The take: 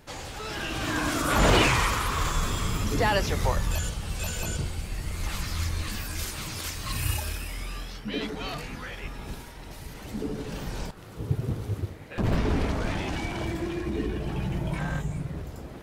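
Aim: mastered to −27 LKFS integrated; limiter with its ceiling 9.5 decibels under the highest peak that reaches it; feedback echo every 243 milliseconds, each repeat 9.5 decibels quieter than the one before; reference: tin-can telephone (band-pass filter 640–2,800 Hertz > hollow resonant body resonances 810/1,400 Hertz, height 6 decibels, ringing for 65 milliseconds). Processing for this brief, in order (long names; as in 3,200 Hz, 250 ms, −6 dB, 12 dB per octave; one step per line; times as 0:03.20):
brickwall limiter −19 dBFS
band-pass filter 640–2,800 Hz
repeating echo 243 ms, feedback 33%, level −9.5 dB
hollow resonant body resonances 810/1,400 Hz, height 6 dB, ringing for 65 ms
level +9.5 dB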